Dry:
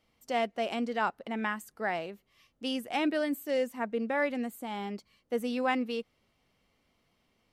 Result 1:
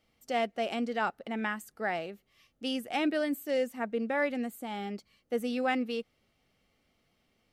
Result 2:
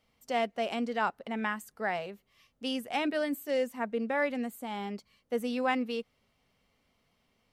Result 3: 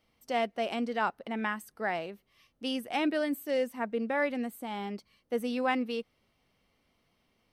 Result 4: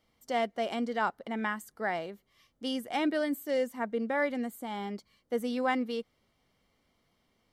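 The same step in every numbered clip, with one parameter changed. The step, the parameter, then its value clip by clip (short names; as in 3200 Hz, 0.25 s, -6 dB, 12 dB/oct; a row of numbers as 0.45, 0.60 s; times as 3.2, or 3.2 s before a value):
notch, frequency: 1000, 330, 7100, 2600 Hz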